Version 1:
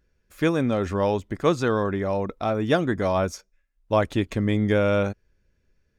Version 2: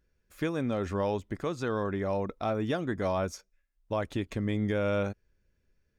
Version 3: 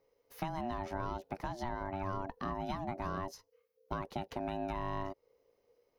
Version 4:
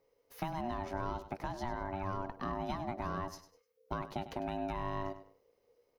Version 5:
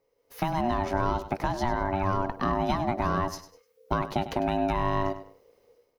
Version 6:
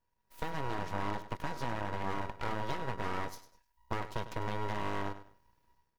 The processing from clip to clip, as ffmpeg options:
-af "alimiter=limit=-15dB:level=0:latency=1:release=244,volume=-5dB"
-filter_complex "[0:a]acrossover=split=120|840[a][b][c];[a]acompressor=threshold=-48dB:ratio=4[d];[b]acompressor=threshold=-35dB:ratio=4[e];[c]acompressor=threshold=-48dB:ratio=4[f];[d][e][f]amix=inputs=3:normalize=0,aeval=exprs='val(0)*sin(2*PI*480*n/s)':c=same,aexciter=amount=1.3:drive=2:freq=4.4k,volume=1.5dB"
-af "aecho=1:1:100|200|300:0.224|0.0627|0.0176"
-af "dynaudnorm=f=140:g=5:m=11dB"
-af "aeval=exprs='abs(val(0))':c=same,volume=-7.5dB"

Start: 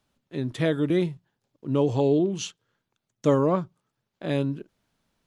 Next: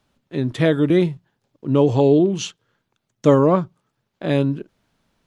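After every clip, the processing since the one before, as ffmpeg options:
-af "highshelf=f=5.8k:g=-5.5,volume=7dB"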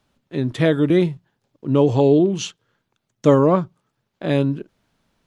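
-af anull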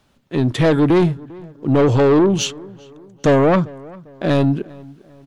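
-filter_complex "[0:a]asoftclip=type=tanh:threshold=-17dB,asplit=2[a][b];[b]adelay=398,lowpass=f=2k:p=1,volume=-22dB,asplit=2[c][d];[d]adelay=398,lowpass=f=2k:p=1,volume=0.43,asplit=2[e][f];[f]adelay=398,lowpass=f=2k:p=1,volume=0.43[g];[a][c][e][g]amix=inputs=4:normalize=0,volume=7.5dB"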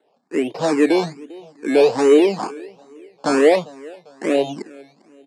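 -filter_complex "[0:a]acrusher=samples=18:mix=1:aa=0.000001:lfo=1:lforange=10.8:lforate=1.3,highpass=f=240:w=0.5412,highpass=f=240:w=1.3066,equalizer=f=460:t=q:w=4:g=7,equalizer=f=750:t=q:w=4:g=5,equalizer=f=1.4k:t=q:w=4:g=-5,equalizer=f=3.3k:t=q:w=4:g=-7,equalizer=f=6.1k:t=q:w=4:g=-8,lowpass=f=7.8k:w=0.5412,lowpass=f=7.8k:w=1.3066,asplit=2[a][b];[b]afreqshift=2.3[c];[a][c]amix=inputs=2:normalize=1"

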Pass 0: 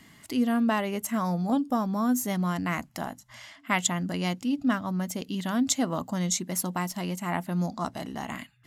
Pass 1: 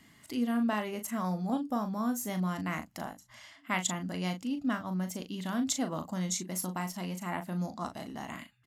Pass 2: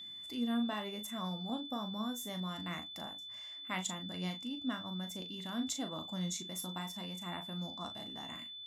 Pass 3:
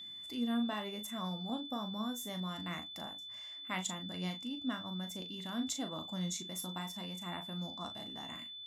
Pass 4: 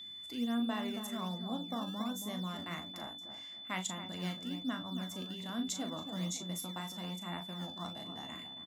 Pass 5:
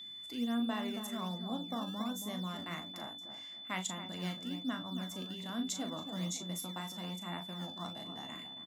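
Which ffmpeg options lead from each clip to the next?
-filter_complex "[0:a]asplit=2[a][b];[b]adelay=38,volume=-8dB[c];[a][c]amix=inputs=2:normalize=0,volume=-6dB"
-af "flanger=delay=9.4:depth=3.6:regen=65:speed=1:shape=sinusoidal,aeval=exprs='val(0)+0.00794*sin(2*PI*3500*n/s)':c=same,volume=-3dB"
-af anull
-filter_complex "[0:a]asplit=2[a][b];[b]adelay=275,lowpass=f=890:p=1,volume=-6.5dB,asplit=2[c][d];[d]adelay=275,lowpass=f=890:p=1,volume=0.34,asplit=2[e][f];[f]adelay=275,lowpass=f=890:p=1,volume=0.34,asplit=2[g][h];[h]adelay=275,lowpass=f=890:p=1,volume=0.34[i];[a][c][e][g][i]amix=inputs=5:normalize=0,acrossover=split=210[j][k];[j]acrusher=samples=17:mix=1:aa=0.000001:lfo=1:lforange=27.2:lforate=1.2[l];[l][k]amix=inputs=2:normalize=0"
-af "highpass=99"

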